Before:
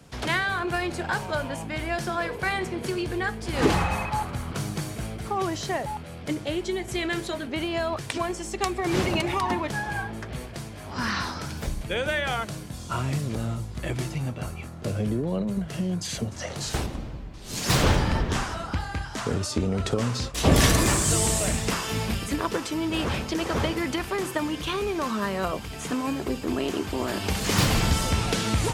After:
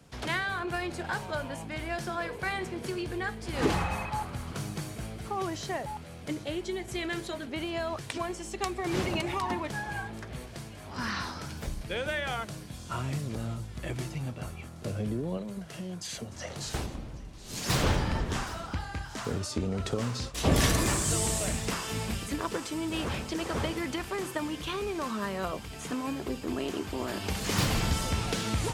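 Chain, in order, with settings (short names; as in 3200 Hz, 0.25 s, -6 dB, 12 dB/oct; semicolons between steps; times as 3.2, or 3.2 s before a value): 15.37–16.3 low shelf 270 Hz -8.5 dB; thin delay 0.774 s, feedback 72%, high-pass 3200 Hz, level -17 dB; gain -5.5 dB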